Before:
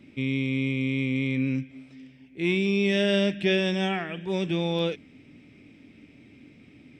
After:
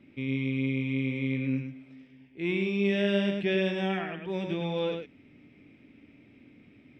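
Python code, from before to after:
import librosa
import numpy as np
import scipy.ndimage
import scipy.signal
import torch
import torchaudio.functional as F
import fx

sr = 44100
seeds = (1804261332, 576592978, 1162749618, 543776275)

p1 = fx.bass_treble(x, sr, bass_db=-2, treble_db=-12)
p2 = p1 + fx.echo_single(p1, sr, ms=105, db=-5.0, dry=0)
y = p2 * 10.0 ** (-4.0 / 20.0)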